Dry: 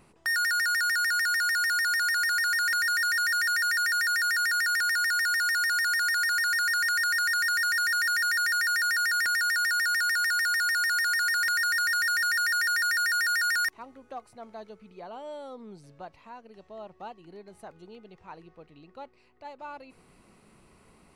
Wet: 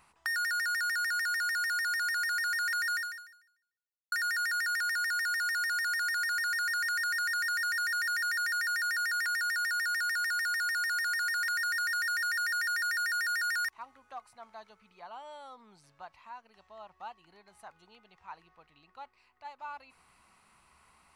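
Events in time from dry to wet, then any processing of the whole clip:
2.96–4.12 fade out exponential
whole clip: bell 69 Hz +9.5 dB 0.5 oct; compressor, threshold -31 dBFS; resonant low shelf 650 Hz -12 dB, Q 1.5; gain -2 dB

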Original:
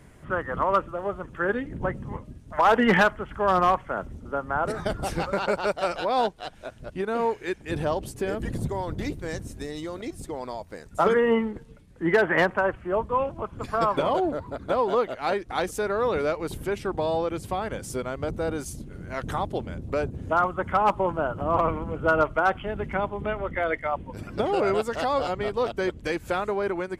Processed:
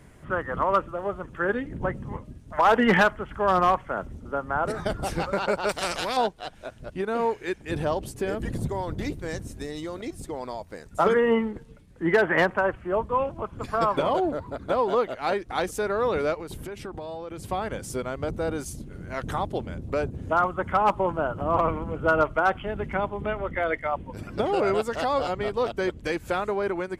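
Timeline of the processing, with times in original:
5.69–6.17 spectral compressor 2:1
16.34–17.39 compressor 12:1, threshold -32 dBFS

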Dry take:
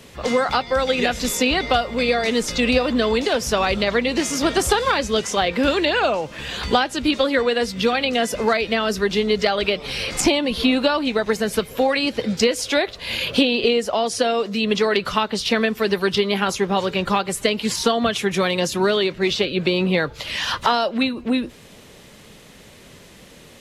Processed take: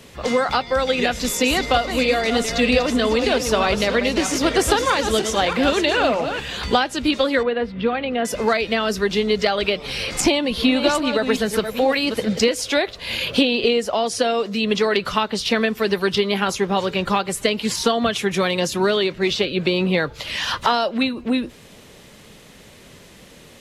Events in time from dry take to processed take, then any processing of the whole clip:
1.11–6.4 regenerating reverse delay 0.316 s, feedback 44%, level -7.5 dB
7.43–8.25 air absorption 470 m
10.15–12.49 reverse delay 0.427 s, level -8 dB

